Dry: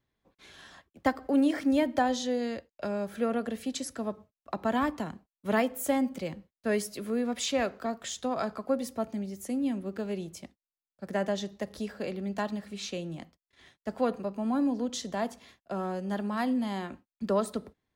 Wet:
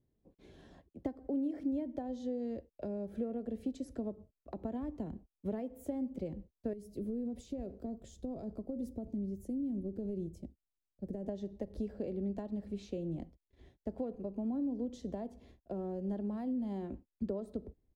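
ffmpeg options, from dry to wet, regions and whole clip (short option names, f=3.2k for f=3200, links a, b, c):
-filter_complex "[0:a]asettb=1/sr,asplit=3[a][b][c];[a]atrim=end=6.734[d];[b]atrim=start=6.73:end=11.29,asetpts=PTS-STARTPTS,afade=t=in:d=0.004:c=qsin,afade=t=out:st=4.556:d=0.004:c=qsin,acompressor=threshold=-31dB:ratio=10:attack=3.2:release=140:knee=1:detection=peak,equalizer=f=1.6k:t=o:w=2.9:g=-12.5[e];[c]atrim=start=11.286[f];[d][e]acrossfade=d=0.004:c1=hsin:c2=qsin[g];[g][f]acrossfade=d=0.004:c1=qsin:c2=hsin,asubboost=boost=5:cutoff=62,acompressor=threshold=-37dB:ratio=6,firequalizer=gain_entry='entry(370,0);entry(1200,-22);entry(2000,-20);entry(7200,-22)':delay=0.05:min_phase=1,volume=4.5dB"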